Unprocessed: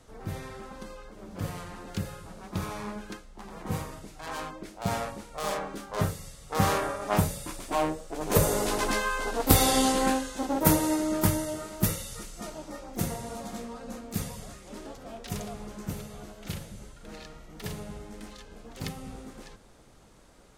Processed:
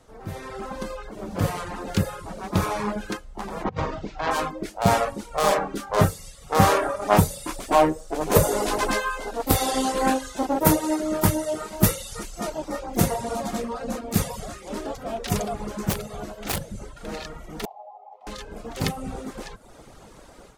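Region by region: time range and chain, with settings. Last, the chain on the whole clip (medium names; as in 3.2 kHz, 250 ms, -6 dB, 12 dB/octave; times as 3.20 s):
3.64–4.31 s: Bessel low-pass 3.7 kHz, order 8 + compressor with a negative ratio -36 dBFS, ratio -0.5
15.90–16.97 s: integer overflow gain 29.5 dB + tape noise reduction on one side only decoder only
17.65–18.27 s: ladder band-pass 810 Hz, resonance 80% + static phaser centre 660 Hz, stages 4
whole clip: reverb removal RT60 0.65 s; peaking EQ 690 Hz +4 dB 2.1 oct; level rider gain up to 10.5 dB; trim -1 dB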